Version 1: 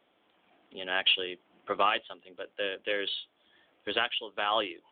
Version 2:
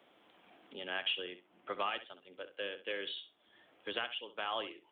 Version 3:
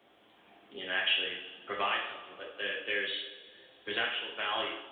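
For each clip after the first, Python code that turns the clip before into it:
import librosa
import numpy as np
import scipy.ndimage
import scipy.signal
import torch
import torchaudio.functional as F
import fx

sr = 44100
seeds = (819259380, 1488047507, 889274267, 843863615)

y1 = scipy.signal.sosfilt(scipy.signal.butter(2, 51.0, 'highpass', fs=sr, output='sos'), x)
y1 = fx.echo_feedback(y1, sr, ms=65, feedback_pct=16, wet_db=-13.5)
y1 = fx.band_squash(y1, sr, depth_pct=40)
y1 = F.gain(torch.from_numpy(y1), -8.5).numpy()
y2 = fx.peak_eq(y1, sr, hz=63.0, db=8.5, octaves=0.53)
y2 = fx.rev_double_slope(y2, sr, seeds[0], early_s=0.53, late_s=2.5, knee_db=-14, drr_db=-2.5)
y2 = fx.dynamic_eq(y2, sr, hz=2000.0, q=1.5, threshold_db=-50.0, ratio=4.0, max_db=8)
y2 = F.gain(torch.from_numpy(y2), -1.5).numpy()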